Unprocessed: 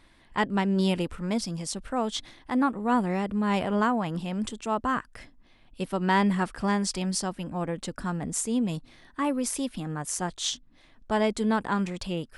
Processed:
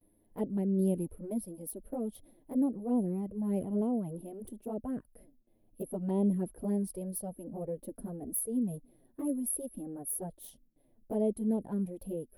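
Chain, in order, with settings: bass shelf 160 Hz -9 dB; touch-sensitive flanger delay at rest 10.4 ms, full sweep at -21.5 dBFS; gate with hold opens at -56 dBFS; FFT filter 400 Hz 0 dB, 590 Hz -2 dB, 1.2 kHz -27 dB, 7.5 kHz -29 dB, 11 kHz +11 dB

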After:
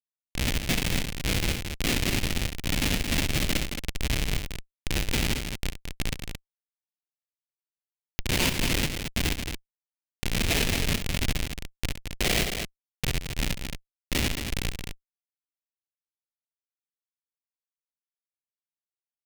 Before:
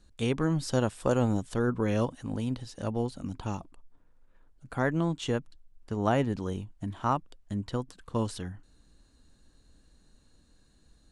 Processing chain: coarse spectral quantiser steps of 30 dB; spring tank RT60 3.7 s, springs 46 ms, chirp 25 ms, DRR 15 dB; LPC vocoder at 8 kHz whisper; speed mistake 78 rpm record played at 45 rpm; level-controlled noise filter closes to 430 Hz, open at -23 dBFS; in parallel at +1 dB: compression 8:1, threshold -40 dBFS, peak gain reduction 18.5 dB; on the sum: Schmitt trigger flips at -27 dBFS; resonant high shelf 1.7 kHz +11 dB, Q 1.5; on a send: loudspeakers at several distances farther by 23 m -11 dB, 76 m -7 dB; on the sum: trim +4.5 dB

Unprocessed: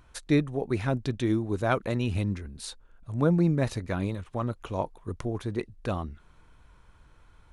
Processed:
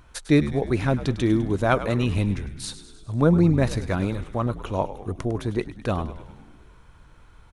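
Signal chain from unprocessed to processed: frequency-shifting echo 102 ms, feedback 61%, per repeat -76 Hz, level -13 dB; trim +5 dB

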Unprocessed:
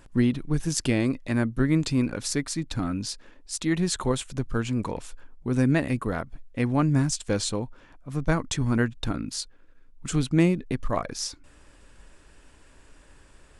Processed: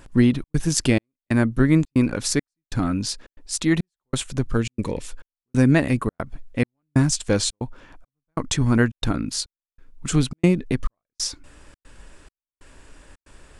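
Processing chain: time-frequency box 4.57–5.08 s, 590–1700 Hz -8 dB; trance gate "xxxx.xxxx...x" 138 bpm -60 dB; trim +5.5 dB

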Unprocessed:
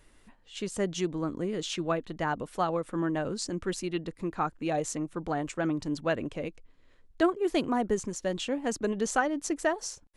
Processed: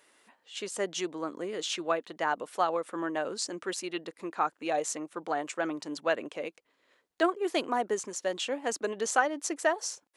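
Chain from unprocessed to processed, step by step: high-pass 450 Hz 12 dB/octave; trim +2 dB

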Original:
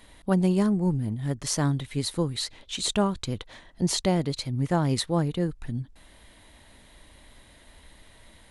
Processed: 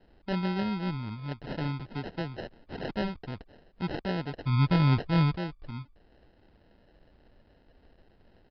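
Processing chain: 4.45–5.36 s: tone controls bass +13 dB, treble -2 dB; sample-and-hold 38×; resampled via 11.025 kHz; 1.80–2.90 s: three bands compressed up and down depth 40%; trim -7.5 dB

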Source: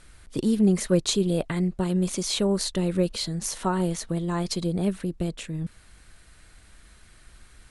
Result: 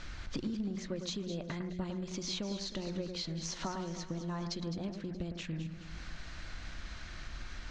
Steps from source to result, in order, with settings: steep low-pass 6.5 kHz 48 dB/octave; peaking EQ 430 Hz -8 dB 0.29 oct; hum notches 60/120/180 Hz; compression 8:1, threshold -45 dBFS, peak gain reduction 26.5 dB; on a send: echo whose repeats swap between lows and highs 105 ms, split 2.1 kHz, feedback 69%, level -7 dB; on the sum: trim +8 dB

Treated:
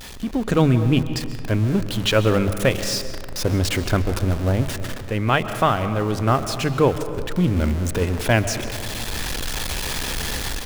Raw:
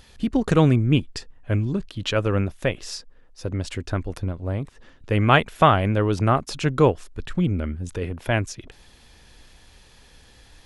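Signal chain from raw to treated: jump at every zero crossing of -28 dBFS; hum notches 50/100/150 Hz; level rider gain up to 12 dB; algorithmic reverb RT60 2 s, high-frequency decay 0.4×, pre-delay 95 ms, DRR 10.5 dB; trim -4.5 dB

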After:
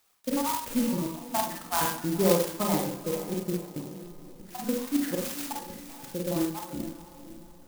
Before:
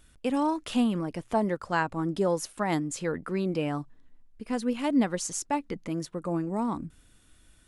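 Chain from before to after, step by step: random holes in the spectrogram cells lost 63%; 2.82–3.78 s: inverse Chebyshev low-pass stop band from 1.4 kHz, stop band 50 dB; echo that smears into a reverb 504 ms, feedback 40%, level -13 dB; Schroeder reverb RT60 0.5 s, combs from 31 ms, DRR -1 dB; sampling jitter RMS 0.11 ms

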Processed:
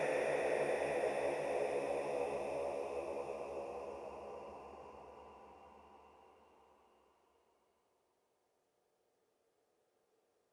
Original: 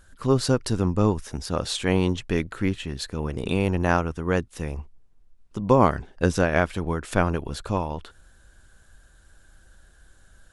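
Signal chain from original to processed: phaser 1.9 Hz, delay 1.7 ms, feedback 25%; high-pass sweep 3.4 kHz -> 120 Hz, 3.03–6.28 s; Paulstretch 31×, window 0.25 s, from 4.68 s; trim -2 dB

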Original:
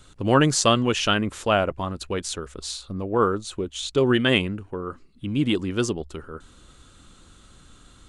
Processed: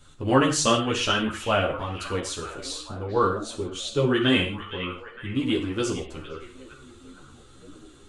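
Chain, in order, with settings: repeats whose band climbs or falls 461 ms, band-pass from 2.7 kHz, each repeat -0.7 oct, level -10 dB; gated-style reverb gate 180 ms falling, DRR 3.5 dB; three-phase chorus

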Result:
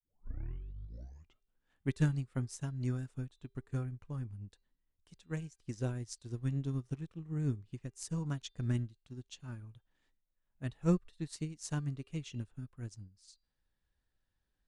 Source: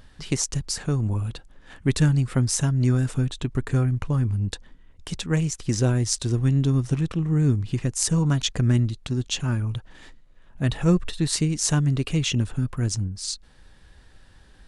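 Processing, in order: tape start-up on the opening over 1.72 s; de-hum 396.5 Hz, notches 12; upward expansion 2.5:1, over -30 dBFS; trim -8.5 dB

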